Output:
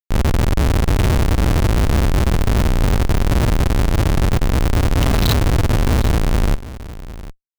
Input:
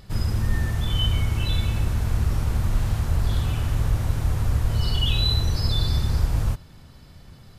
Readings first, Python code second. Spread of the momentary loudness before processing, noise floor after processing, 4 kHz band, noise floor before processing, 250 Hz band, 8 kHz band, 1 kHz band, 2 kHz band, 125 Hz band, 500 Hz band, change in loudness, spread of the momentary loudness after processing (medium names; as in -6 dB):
3 LU, -36 dBFS, 0.0 dB, -47 dBFS, +12.5 dB, +9.5 dB, +12.5 dB, +10.5 dB, +5.5 dB, +15.0 dB, +6.5 dB, 6 LU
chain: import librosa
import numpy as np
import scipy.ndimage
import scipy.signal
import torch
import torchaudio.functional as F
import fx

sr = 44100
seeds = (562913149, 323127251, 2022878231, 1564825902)

y = fx.schmitt(x, sr, flips_db=-22.5)
y = y + 10.0 ** (-16.0 / 20.0) * np.pad(y, (int(756 * sr / 1000.0), 0))[:len(y)]
y = y * 10.0 ** (8.0 / 20.0)